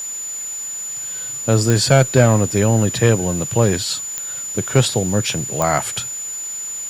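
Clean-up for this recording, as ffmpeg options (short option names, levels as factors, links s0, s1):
-af "adeclick=t=4,bandreject=f=7000:w=30,afwtdn=0.01"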